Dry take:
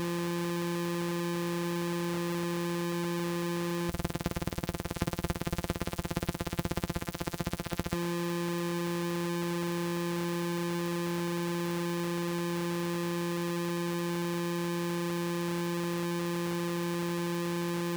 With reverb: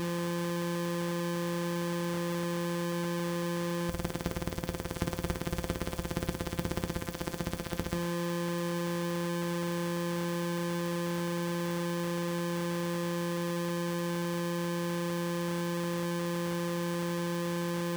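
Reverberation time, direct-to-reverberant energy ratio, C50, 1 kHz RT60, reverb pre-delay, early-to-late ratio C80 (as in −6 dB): 0.40 s, 7.5 dB, 13.5 dB, 0.40 s, 6 ms, 18.0 dB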